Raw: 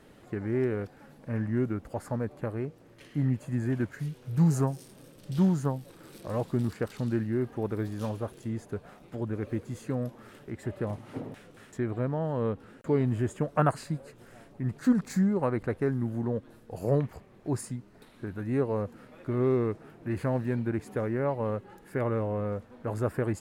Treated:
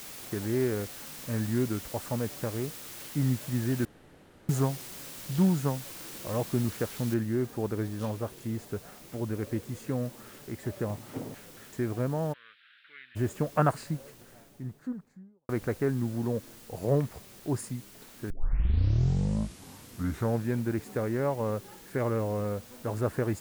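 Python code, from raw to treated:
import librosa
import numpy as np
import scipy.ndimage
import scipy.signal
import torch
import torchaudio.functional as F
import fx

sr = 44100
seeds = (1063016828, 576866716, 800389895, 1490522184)

y = fx.peak_eq(x, sr, hz=5700.0, db=10.5, octaves=0.58, at=(0.81, 1.3))
y = fx.noise_floor_step(y, sr, seeds[0], at_s=7.14, before_db=-44, after_db=-53, tilt_db=0.0)
y = fx.ellip_bandpass(y, sr, low_hz=1500.0, high_hz=3700.0, order=3, stop_db=40, at=(12.32, 13.15), fade=0.02)
y = fx.studio_fade_out(y, sr, start_s=13.69, length_s=1.8)
y = fx.edit(y, sr, fx.room_tone_fill(start_s=3.85, length_s=0.64),
    fx.tape_start(start_s=18.3, length_s=2.25), tone=tone)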